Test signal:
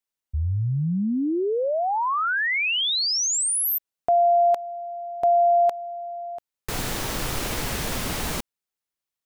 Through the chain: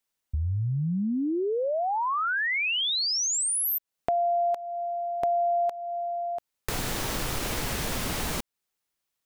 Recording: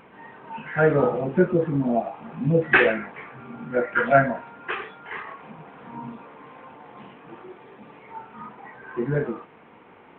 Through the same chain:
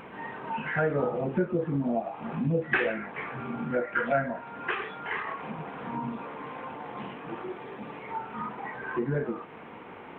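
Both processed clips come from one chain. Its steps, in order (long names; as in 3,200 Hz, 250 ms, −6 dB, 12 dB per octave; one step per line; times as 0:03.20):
downward compressor 2.5 to 1, threshold −36 dBFS
level +5.5 dB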